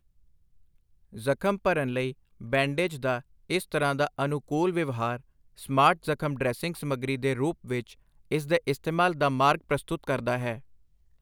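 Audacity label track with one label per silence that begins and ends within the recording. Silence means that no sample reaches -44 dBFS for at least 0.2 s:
2.130000	2.410000	silence
3.210000	3.500000	silence
5.190000	5.580000	silence
7.930000	8.310000	silence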